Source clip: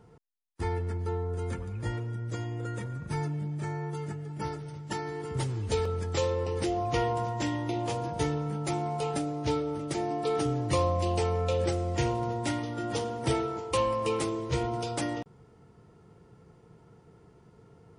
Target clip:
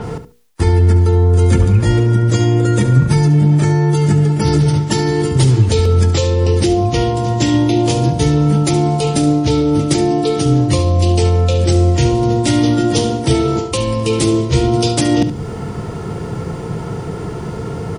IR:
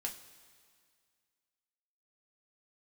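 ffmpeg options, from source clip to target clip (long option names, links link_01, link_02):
-filter_complex "[0:a]areverse,acompressor=threshold=-39dB:ratio=16,areverse,apsyclip=33dB,acrossover=split=390|3000[link_01][link_02][link_03];[link_02]acompressor=threshold=-28dB:ratio=4[link_04];[link_01][link_04][link_03]amix=inputs=3:normalize=0,bandreject=frequency=60:width_type=h:width=6,bandreject=frequency=120:width_type=h:width=6,bandreject=frequency=180:width_type=h:width=6,bandreject=frequency=240:width_type=h:width=6,bandreject=frequency=300:width_type=h:width=6,bandreject=frequency=360:width_type=h:width=6,bandreject=frequency=420:width_type=h:width=6,bandreject=frequency=480:width_type=h:width=6,asplit=2[link_05][link_06];[link_06]aecho=0:1:71|142:0.251|0.0452[link_07];[link_05][link_07]amix=inputs=2:normalize=0,adynamicequalizer=threshold=0.0141:dfrequency=6200:dqfactor=0.7:tfrequency=6200:tqfactor=0.7:attack=5:release=100:ratio=0.375:range=2:mode=cutabove:tftype=highshelf"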